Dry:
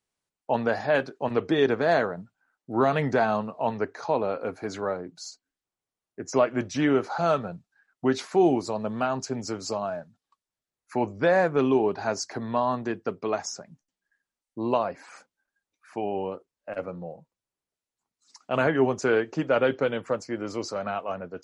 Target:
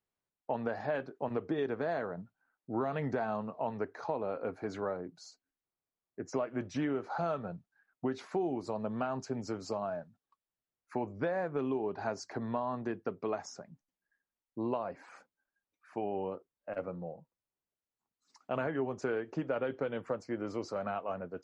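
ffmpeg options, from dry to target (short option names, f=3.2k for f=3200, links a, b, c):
-filter_complex "[0:a]highshelf=f=3.3k:g=-12,acompressor=threshold=-26dB:ratio=6,asplit=3[a][b][c];[a]afade=t=out:st=1.05:d=0.02[d];[b]adynamicequalizer=threshold=0.00447:dfrequency=1700:dqfactor=0.7:tfrequency=1700:tqfactor=0.7:attack=5:release=100:ratio=0.375:range=3.5:mode=cutabove:tftype=highshelf,afade=t=in:st=1.05:d=0.02,afade=t=out:st=1.57:d=0.02[e];[c]afade=t=in:st=1.57:d=0.02[f];[d][e][f]amix=inputs=3:normalize=0,volume=-4dB"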